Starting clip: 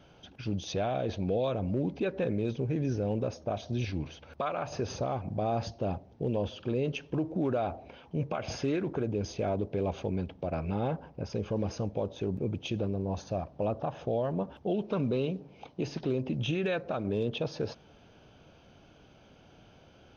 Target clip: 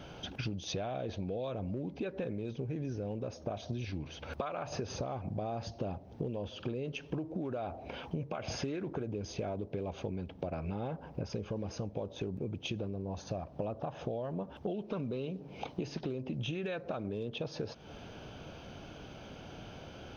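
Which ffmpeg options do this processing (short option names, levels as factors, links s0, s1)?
-af "acompressor=threshold=0.00708:ratio=12,volume=2.82"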